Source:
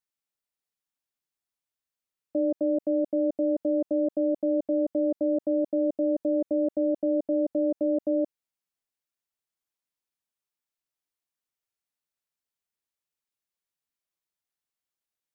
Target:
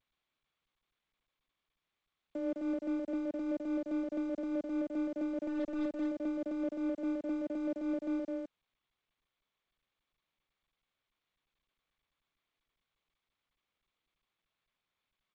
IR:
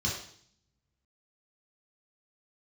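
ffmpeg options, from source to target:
-filter_complex "[0:a]acrossover=split=110|260|350[link_01][link_02][link_03][link_04];[link_01]flanger=delay=3.7:depth=7.2:regen=-15:speed=0.3:shape=sinusoidal[link_05];[link_02]acontrast=43[link_06];[link_05][link_06][link_03][link_04]amix=inputs=4:normalize=0,tremolo=f=4.8:d=0.38,adynamicsmooth=sensitivity=1.5:basefreq=640,asplit=3[link_07][link_08][link_09];[link_07]afade=type=out:start_time=5.38:duration=0.02[link_10];[link_08]aeval=exprs='0.133*(cos(1*acos(clip(val(0)/0.133,-1,1)))-cos(1*PI/2))+0.00596*(cos(3*acos(clip(val(0)/0.133,-1,1)))-cos(3*PI/2))+0.0119*(cos(5*acos(clip(val(0)/0.133,-1,1)))-cos(5*PI/2))+0.00133*(cos(7*acos(clip(val(0)/0.133,-1,1)))-cos(7*PI/2))+0.00531*(cos(8*acos(clip(val(0)/0.133,-1,1)))-cos(8*PI/2))':channel_layout=same,afade=type=in:start_time=5.38:duration=0.02,afade=type=out:start_time=5.88:duration=0.02[link_11];[link_09]afade=type=in:start_time=5.88:duration=0.02[link_12];[link_10][link_11][link_12]amix=inputs=3:normalize=0,aeval=exprs='sgn(val(0))*max(abs(val(0))-0.00447,0)':channel_layout=same,aecho=1:1:208:0.668,volume=-9dB" -ar 16000 -c:a g722

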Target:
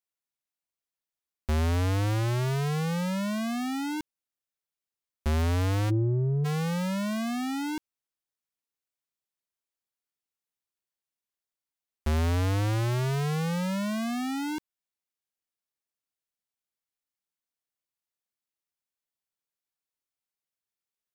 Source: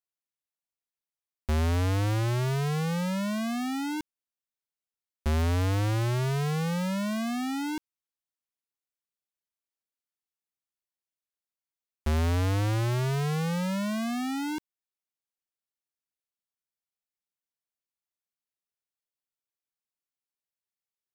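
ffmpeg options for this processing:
ffmpeg -i in.wav -filter_complex "[0:a]asplit=3[link_01][link_02][link_03];[link_01]afade=type=out:start_time=5.89:duration=0.02[link_04];[link_02]lowpass=frequency=290:width_type=q:width=3.5,afade=type=in:start_time=5.89:duration=0.02,afade=type=out:start_time=6.44:duration=0.02[link_05];[link_03]afade=type=in:start_time=6.44:duration=0.02[link_06];[link_04][link_05][link_06]amix=inputs=3:normalize=0" out.wav

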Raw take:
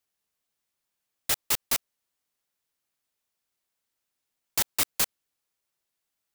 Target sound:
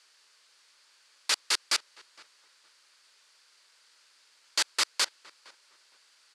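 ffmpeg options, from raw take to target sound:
ffmpeg -i in.wav -filter_complex "[0:a]asplit=2[link_01][link_02];[link_02]highpass=frequency=720:poles=1,volume=36dB,asoftclip=type=tanh:threshold=-9dB[link_03];[link_01][link_03]amix=inputs=2:normalize=0,lowpass=frequency=4900:poles=1,volume=-6dB,highpass=440,equalizer=frequency=730:width_type=q:width=4:gain=-9,equalizer=frequency=1500:width_type=q:width=4:gain=3,equalizer=frequency=4600:width_type=q:width=4:gain=8,lowpass=frequency=9500:width=0.5412,lowpass=frequency=9500:width=1.3066,asplit=2[link_04][link_05];[link_05]adelay=462,lowpass=frequency=2000:poles=1,volume=-21dB,asplit=2[link_06][link_07];[link_07]adelay=462,lowpass=frequency=2000:poles=1,volume=0.25[link_08];[link_04][link_06][link_08]amix=inputs=3:normalize=0,volume=-5.5dB" out.wav

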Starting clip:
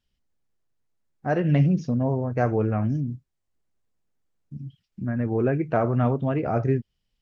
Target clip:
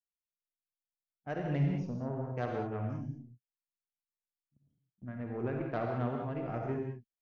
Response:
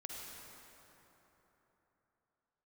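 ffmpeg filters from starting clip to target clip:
-filter_complex "[0:a]aeval=exprs='0.398*(cos(1*acos(clip(val(0)/0.398,-1,1)))-cos(1*PI/2))+0.0355*(cos(4*acos(clip(val(0)/0.398,-1,1)))-cos(4*PI/2))+0.00447*(cos(5*acos(clip(val(0)/0.398,-1,1)))-cos(5*PI/2))+0.0282*(cos(6*acos(clip(val(0)/0.398,-1,1)))-cos(6*PI/2))+0.02*(cos(7*acos(clip(val(0)/0.398,-1,1)))-cos(7*PI/2))':channel_layout=same,agate=range=-24dB:threshold=-34dB:ratio=16:detection=peak[link_01];[1:a]atrim=start_sample=2205,afade=type=out:start_time=0.27:duration=0.01,atrim=end_sample=12348[link_02];[link_01][link_02]afir=irnorm=-1:irlink=0,volume=-7.5dB"

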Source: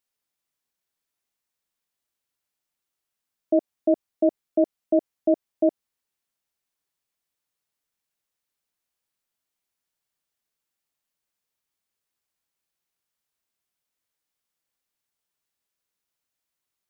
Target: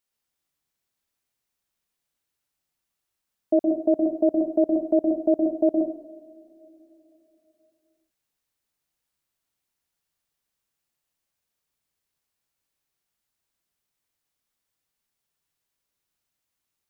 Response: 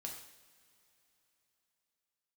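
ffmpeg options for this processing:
-filter_complex "[0:a]asplit=2[link_01][link_02];[1:a]atrim=start_sample=2205,lowshelf=frequency=180:gain=10.5,adelay=118[link_03];[link_02][link_03]afir=irnorm=-1:irlink=0,volume=0dB[link_04];[link_01][link_04]amix=inputs=2:normalize=0"

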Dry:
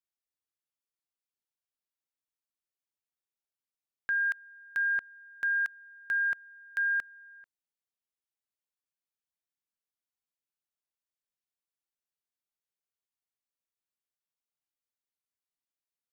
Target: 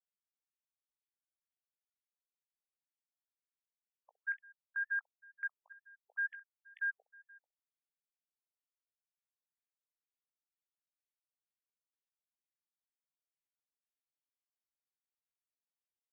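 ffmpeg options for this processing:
ffmpeg -i in.wav -af "aecho=1:1:18|64:0.266|0.133,afftfilt=real='re*between(b*sr/1024,550*pow(2500/550,0.5+0.5*sin(2*PI*2.1*pts/sr))/1.41,550*pow(2500/550,0.5+0.5*sin(2*PI*2.1*pts/sr))*1.41)':imag='im*between(b*sr/1024,550*pow(2500/550,0.5+0.5*sin(2*PI*2.1*pts/sr))/1.41,550*pow(2500/550,0.5+0.5*sin(2*PI*2.1*pts/sr))*1.41)':win_size=1024:overlap=0.75,volume=-8dB" out.wav

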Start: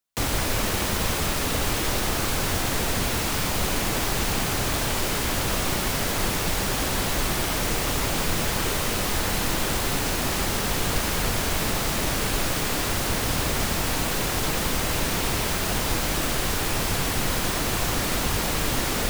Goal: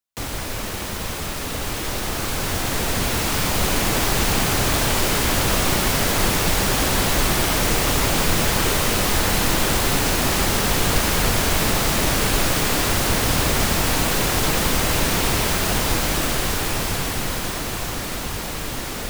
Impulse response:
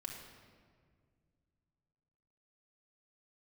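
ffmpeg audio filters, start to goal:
-af "dynaudnorm=framelen=260:gausssize=21:maxgain=11.5dB,volume=-3.5dB"

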